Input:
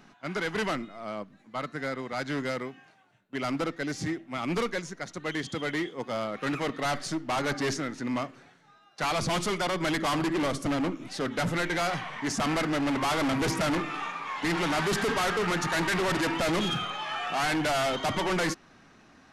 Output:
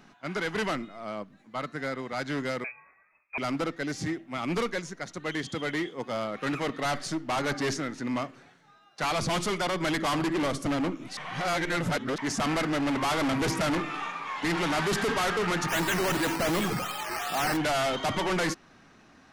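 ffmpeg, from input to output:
-filter_complex "[0:a]asettb=1/sr,asplit=3[s0][s1][s2];[s0]atrim=end=2.644[s3];[s1]atrim=start=2.64:end=3.38,asetpts=PTS-STARTPTS,afade=t=in:d=0.004:c=qsin,afade=t=out:st=0.736:d=0.004:c=qsin,lowpass=f=2300:t=q:w=0.5098,lowpass=f=2300:t=q:w=0.6013,lowpass=f=2300:t=q:w=0.9,lowpass=f=2300:t=q:w=2.563,afreqshift=-2700[s4];[s2]atrim=start=3.376[s5];[s3][s4]acrossfade=d=0.004:c1=hsin:c2=qsin[s6];[s6][s5]acrossfade=d=0.004:c1=qsin:c2=hsin,asplit=3[s7][s8][s9];[s7]afade=t=out:st=15.68:d=0.02[s10];[s8]acrusher=samples=10:mix=1:aa=0.000001:lfo=1:lforange=6:lforate=2.7,afade=t=in:st=15.68:d=0.02,afade=t=out:st=17.56:d=0.02[s11];[s9]afade=t=in:st=17.56:d=0.02[s12];[s10][s11][s12]amix=inputs=3:normalize=0,asplit=3[s13][s14][s15];[s13]atrim=end=11.172[s16];[s14]atrim=start=11.168:end=12.182,asetpts=PTS-STARTPTS,areverse[s17];[s15]atrim=start=12.178[s18];[s16][s17]acrossfade=d=0.004:c1=hsin:c2=hsin[s19];[s19][s18]acrossfade=d=0.004:c1=hsin:c2=hsin"

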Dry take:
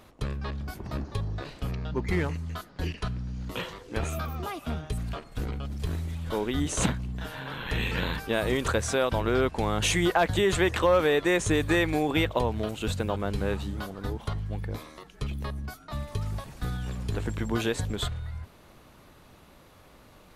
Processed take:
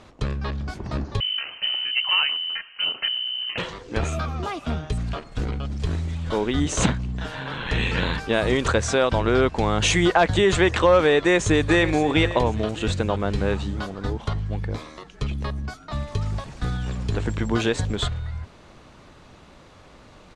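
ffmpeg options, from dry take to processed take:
-filter_complex "[0:a]asettb=1/sr,asplit=3[s0][s1][s2];[s0]atrim=end=1.204[s3];[s1]atrim=start=1.2:end=3.58,asetpts=PTS-STARTPTS,afade=t=in:d=0.004:c=qsin,afade=t=out:st=2.376:d=0.004:c=qsin,lowpass=f=2600:t=q:w=0.5098,lowpass=f=2600:t=q:w=0.6013,lowpass=f=2600:t=q:w=0.9,lowpass=f=2600:t=q:w=2.563,afreqshift=-3100[s4];[s2]atrim=start=3.576[s5];[s3][s4]acrossfade=d=0.004:c1=hsin:c2=qsin[s6];[s6][s5]acrossfade=d=0.004:c1=qsin:c2=hsin,asplit=2[s7][s8];[s8]afade=t=in:st=11.15:d=0.01,afade=t=out:st=11.97:d=0.01,aecho=0:1:530|1060|1590|2120:0.199526|0.0798105|0.0319242|0.0127697[s9];[s7][s9]amix=inputs=2:normalize=0,lowpass=f=7900:w=0.5412,lowpass=f=7900:w=1.3066,volume=1.88"

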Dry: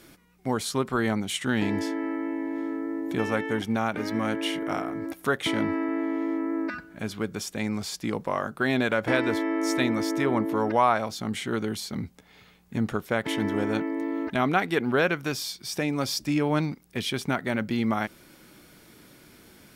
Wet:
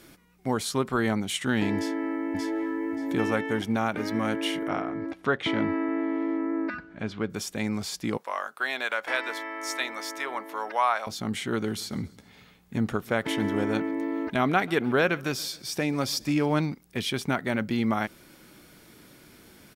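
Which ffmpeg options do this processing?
-filter_complex "[0:a]asplit=2[s0][s1];[s1]afade=t=in:st=1.76:d=0.01,afade=t=out:st=2.73:d=0.01,aecho=0:1:580|1160|1740:0.749894|0.149979|0.0299958[s2];[s0][s2]amix=inputs=2:normalize=0,asettb=1/sr,asplit=3[s3][s4][s5];[s3]atrim=end=4.684[s6];[s4]atrim=start=4.68:end=7.3,asetpts=PTS-STARTPTS,afade=t=in:d=0.004:c=qsin,afade=t=out:st=2.616:d=0.004:c=qsin,lowpass=3800[s7];[s5]atrim=start=7.296[s8];[s6][s7]acrossfade=d=0.004:c1=hsin:c2=qsin[s9];[s9][s8]acrossfade=d=0.004:c1=qsin:c2=hsin,asettb=1/sr,asplit=3[s10][s11][s12];[s10]atrim=end=8.174[s13];[s11]atrim=start=8.17:end=11.07,asetpts=PTS-STARTPTS,afade=t=in:d=0.004:c=qsin,afade=t=out:st=2.896:d=0.004:c=qsin,highpass=840[s14];[s12]atrim=start=11.066[s15];[s13][s14]acrossfade=d=0.004:c1=hsin:c2=qsin[s16];[s16][s15]acrossfade=d=0.004:c1=qsin:c2=hsin,asplit=3[s17][s18][s19];[s17]afade=t=out:st=11.63:d=0.02[s20];[s18]aecho=1:1:138|276|414|552:0.0668|0.0401|0.0241|0.0144,afade=t=in:st=11.63:d=0.02,afade=t=out:st=16.53:d=0.02[s21];[s19]afade=t=in:st=16.53:d=0.02[s22];[s20][s21][s22]amix=inputs=3:normalize=0"

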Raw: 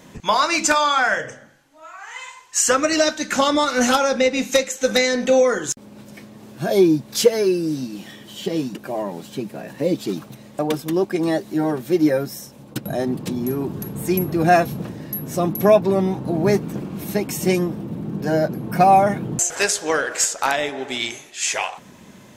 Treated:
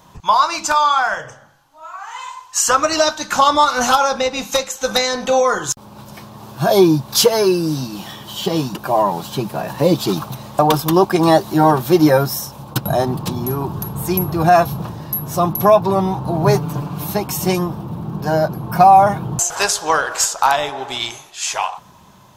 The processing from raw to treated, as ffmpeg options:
-filter_complex "[0:a]asettb=1/sr,asplit=3[s0][s1][s2];[s0]atrim=end=16.414[s3];[s1]atrim=start=16.41:end=17.07,asetpts=PTS-STARTPTS,afade=t=in:d=0.004:c=qsin,afade=t=out:st=0.656:d=0.004:c=qsin,aecho=1:1:6.9:0.65,atrim=end_sample=29106[s4];[s2]atrim=start=17.066[s5];[s3][s4]acrossfade=d=0.004:c1=hsin:c2=qsin[s6];[s6][s5]acrossfade=d=0.004:c1=qsin:c2=hsin,equalizer=f=250:t=o:w=1:g=-12,equalizer=f=500:t=o:w=1:g=-8,equalizer=f=1000:t=o:w=1:g=8,equalizer=f=2000:t=o:w=1:g=-12,equalizer=f=8000:t=o:w=1:g=-7,dynaudnorm=f=290:g=11:m=5.01,alimiter=level_in=1.58:limit=0.891:release=50:level=0:latency=1,volume=0.891"

